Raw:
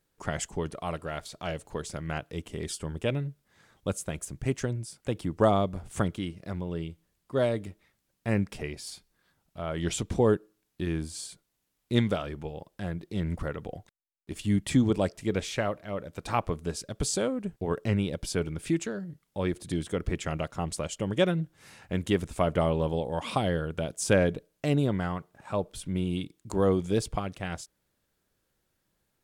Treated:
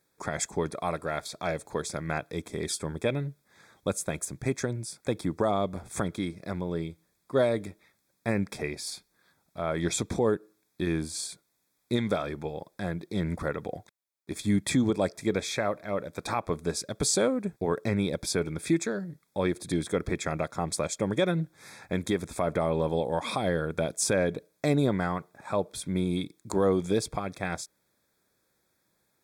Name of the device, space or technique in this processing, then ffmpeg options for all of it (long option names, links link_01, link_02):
PA system with an anti-feedback notch: -af "highpass=frequency=190:poles=1,asuperstop=centerf=2900:order=12:qfactor=4.6,alimiter=limit=-19.5dB:level=0:latency=1:release=158,volume=4.5dB"